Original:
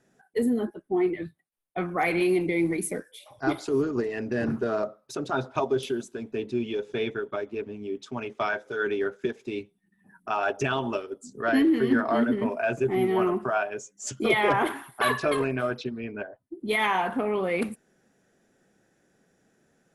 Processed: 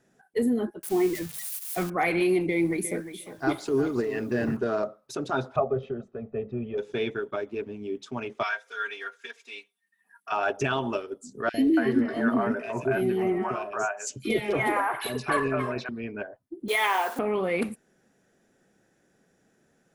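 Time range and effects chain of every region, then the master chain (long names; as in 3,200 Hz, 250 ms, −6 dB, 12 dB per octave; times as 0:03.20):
0:00.83–0:01.90: spike at every zero crossing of −26.5 dBFS + low-shelf EQ 73 Hz +11.5 dB + mains-hum notches 50/100/150/200/250 Hz
0:02.49–0:04.57: repeating echo 354 ms, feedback 17%, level −12 dB + bit-depth reduction 10 bits, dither none
0:05.56–0:06.78: low-pass filter 1,100 Hz + comb filter 1.6 ms, depth 82%
0:08.43–0:10.32: high-pass filter 1,300 Hz + comb filter 4.3 ms, depth 92%
0:11.49–0:15.89: notch filter 3,300 Hz, Q 10 + three-band delay without the direct sound highs, lows, mids 50/280 ms, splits 570/2,400 Hz
0:16.68–0:17.19: hold until the input has moved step −40 dBFS + high-pass filter 370 Hz 24 dB per octave + high-shelf EQ 6,500 Hz +6.5 dB
whole clip: no processing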